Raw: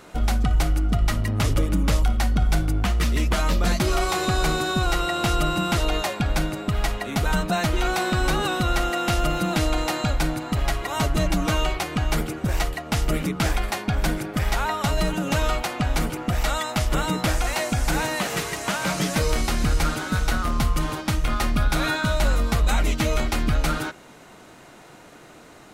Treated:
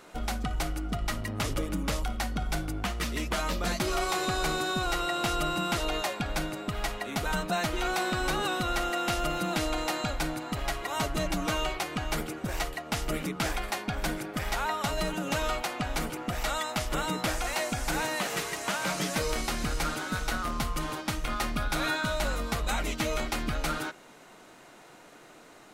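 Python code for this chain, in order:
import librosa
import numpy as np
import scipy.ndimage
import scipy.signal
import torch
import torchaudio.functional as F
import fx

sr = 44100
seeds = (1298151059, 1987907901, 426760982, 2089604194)

y = fx.peak_eq(x, sr, hz=69.0, db=-9.5, octaves=2.6)
y = y * librosa.db_to_amplitude(-4.5)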